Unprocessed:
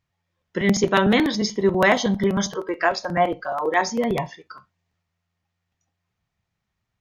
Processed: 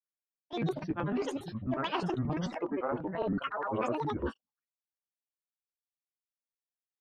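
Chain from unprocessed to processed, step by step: LPF 2000 Hz 12 dB/oct; gate -34 dBFS, range -55 dB; reverse; compressor 12:1, threshold -28 dBFS, peak gain reduction 15.5 dB; reverse; grains, pitch spread up and down by 12 st

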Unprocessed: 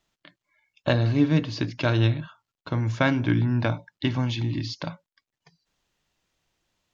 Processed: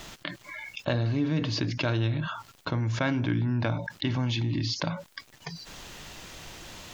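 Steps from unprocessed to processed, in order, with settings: fast leveller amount 70%; gain -8.5 dB

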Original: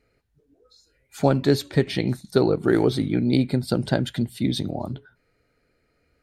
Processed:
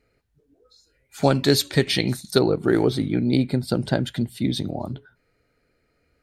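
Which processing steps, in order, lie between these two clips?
1.22–2.39 high shelf 2100 Hz +11.5 dB

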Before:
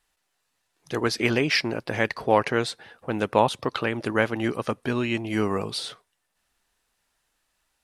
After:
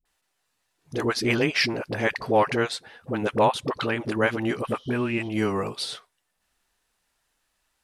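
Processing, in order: spectral repair 4.63–5.21, 2900–7000 Hz after; dispersion highs, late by 54 ms, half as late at 440 Hz

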